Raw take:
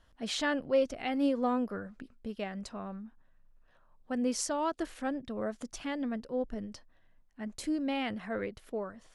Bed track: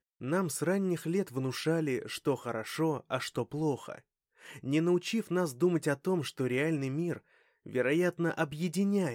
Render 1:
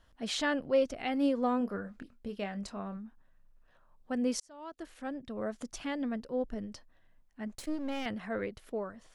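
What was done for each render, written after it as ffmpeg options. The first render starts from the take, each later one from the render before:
-filter_complex "[0:a]asettb=1/sr,asplit=3[a][b][c];[a]atrim=end=1.584[d];[b]atrim=start=1.58:end=2.97,asetpts=PTS-STARTPTS,afade=t=in:d=0.004:c=qsin,afade=t=out:st=1.386:d=0.004:c=qsin,asplit=2[e][f];[f]adelay=25,volume=-10dB[g];[e][g]amix=inputs=2:normalize=0,atrim=end_sample=61299[h];[c]atrim=start=2.966[i];[d][h]acrossfade=d=0.004:c1=hsin:c2=qsin[j];[j][i]acrossfade=d=0.004:c1=qsin:c2=hsin,asettb=1/sr,asplit=3[k][l][m];[k]atrim=end=7.554[n];[l]atrim=start=7.55:end=8.06,asetpts=PTS-STARTPTS,afade=t=in:d=0.004:c=qsin,afade=t=out:st=0.506:d=0.004:c=qsin,aeval=exprs='if(lt(val(0),0),0.251*val(0),val(0))':c=same[o];[m]atrim=start=8.056[p];[n][o]acrossfade=d=0.004:c1=hsin:c2=qsin[q];[q][p]acrossfade=d=0.004:c1=qsin:c2=hsin,asplit=2[r][s];[r]atrim=end=4.4,asetpts=PTS-STARTPTS,afade=t=out:st=4.396:d=0.004:c=hsin[t];[s]atrim=start=4.4,asetpts=PTS-STARTPTS,afade=t=in:d=1.18[u];[t][u]concat=n=2:v=0:a=1"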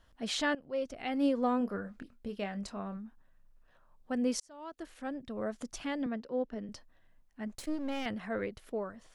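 -filter_complex "[0:a]asettb=1/sr,asplit=3[a][b][c];[a]atrim=end=6.064[d];[b]atrim=start=6.06:end=6.69,asetpts=PTS-STARTPTS,afade=t=in:d=0.004:c=qsin,afade=t=out:st=0.626:d=0.004:c=qsin,acrossover=split=160 5800:gain=0.224 1 0.178[e][f][g];[e][f][g]amix=inputs=3:normalize=0[h];[c]atrim=start=6.686[i];[d][h]acrossfade=d=0.004:c1=hsin:c2=qsin[j];[j][i]acrossfade=d=0.004:c1=qsin:c2=hsin,asplit=2[k][l];[k]atrim=end=0.55,asetpts=PTS-STARTPTS,afade=t=out:st=0.546:d=0.004:c=hsin:silence=0.133352[m];[l]atrim=start=0.55,asetpts=PTS-STARTPTS,afade=t=in:d=0.71:silence=0.133352[n];[m][n]concat=n=2:v=0:a=1"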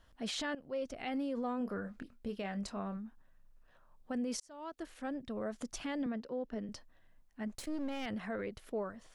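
-af "alimiter=level_in=6dB:limit=-24dB:level=0:latency=1:release=34,volume=-6dB"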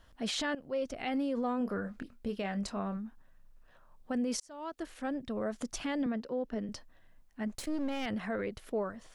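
-af "volume=4dB"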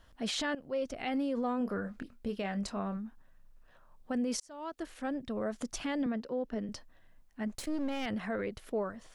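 -af anull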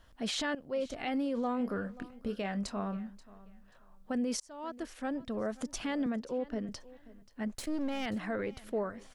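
-af "aecho=1:1:533|1066:0.1|0.025"

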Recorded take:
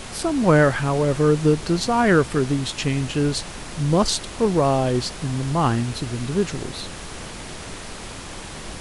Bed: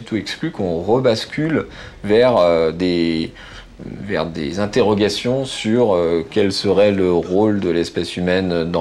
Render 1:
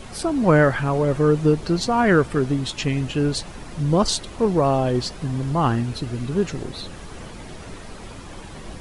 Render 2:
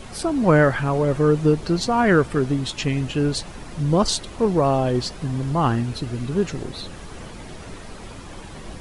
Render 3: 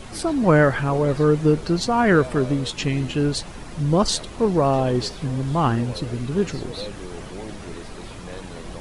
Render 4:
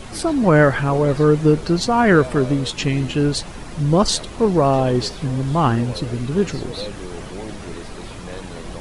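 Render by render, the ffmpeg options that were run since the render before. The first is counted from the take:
-af "afftdn=nr=9:nf=-36"
-af anull
-filter_complex "[1:a]volume=-22dB[a];[0:a][a]amix=inputs=2:normalize=0"
-af "volume=3dB,alimiter=limit=-3dB:level=0:latency=1"

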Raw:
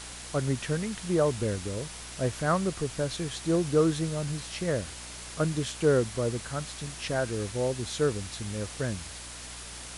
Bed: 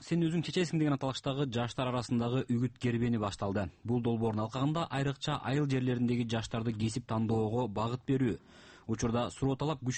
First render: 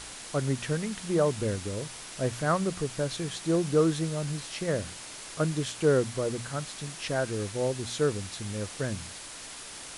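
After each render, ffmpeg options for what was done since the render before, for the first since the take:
-af "bandreject=f=60:t=h:w=4,bandreject=f=120:t=h:w=4,bandreject=f=180:t=h:w=4,bandreject=f=240:t=h:w=4"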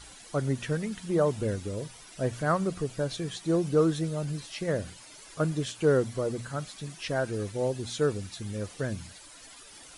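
-af "afftdn=nr=12:nf=-43"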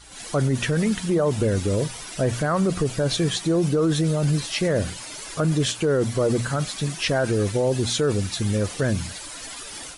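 -af "dynaudnorm=f=100:g=3:m=13dB,alimiter=limit=-13.5dB:level=0:latency=1:release=23"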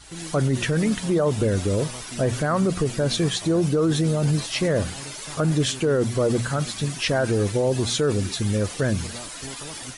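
-filter_complex "[1:a]volume=-8dB[a];[0:a][a]amix=inputs=2:normalize=0"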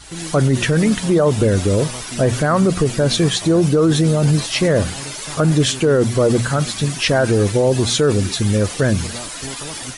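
-af "volume=6.5dB"

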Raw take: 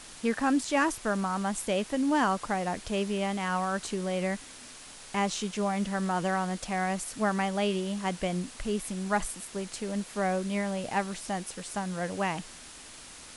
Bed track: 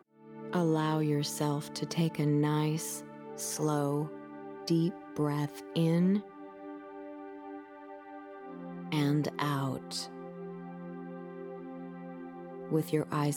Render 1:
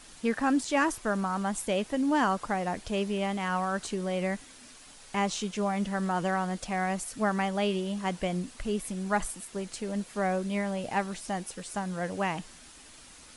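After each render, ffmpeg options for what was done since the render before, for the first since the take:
-af "afftdn=nr=6:nf=-48"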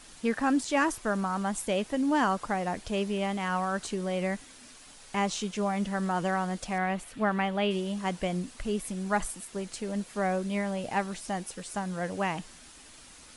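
-filter_complex "[0:a]asettb=1/sr,asplit=3[a][b][c];[a]atrim=end=6.784[d];[b]atrim=start=6.78:end=7.71,asetpts=PTS-STARTPTS,afade=t=in:d=0.004:c=qsin,afade=t=out:st=0.926:d=0.004:c=qsin,highshelf=f=4.2k:t=q:w=1.5:g=-8.5[e];[c]atrim=start=7.706[f];[d][e]acrossfade=d=0.004:c1=hsin:c2=qsin[g];[g][f]acrossfade=d=0.004:c1=qsin:c2=hsin"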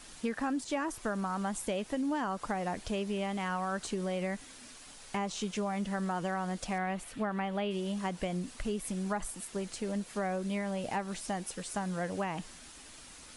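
-filter_complex "[0:a]acrossover=split=1300[a][b];[b]alimiter=level_in=3dB:limit=-24dB:level=0:latency=1:release=124,volume=-3dB[c];[a][c]amix=inputs=2:normalize=0,acompressor=threshold=-30dB:ratio=6"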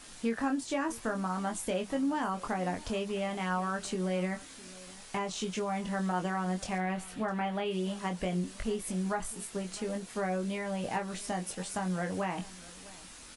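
-filter_complex "[0:a]asplit=2[a][b];[b]adelay=22,volume=-5dB[c];[a][c]amix=inputs=2:normalize=0,aecho=1:1:656:0.0944"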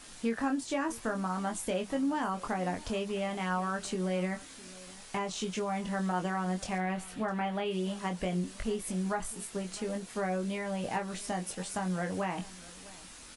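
-af anull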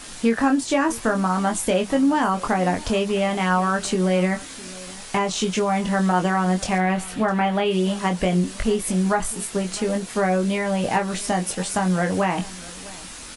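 -af "volume=12dB"

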